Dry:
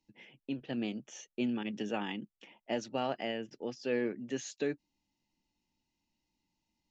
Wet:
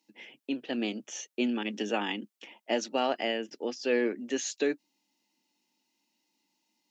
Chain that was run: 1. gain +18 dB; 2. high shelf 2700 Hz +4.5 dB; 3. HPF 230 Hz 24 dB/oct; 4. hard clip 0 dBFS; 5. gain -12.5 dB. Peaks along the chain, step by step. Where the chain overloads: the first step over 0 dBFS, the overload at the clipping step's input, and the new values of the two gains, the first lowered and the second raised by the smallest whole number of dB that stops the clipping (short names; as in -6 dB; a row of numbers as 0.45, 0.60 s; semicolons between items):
-2.0, -1.5, -2.0, -2.0, -14.5 dBFS; no overload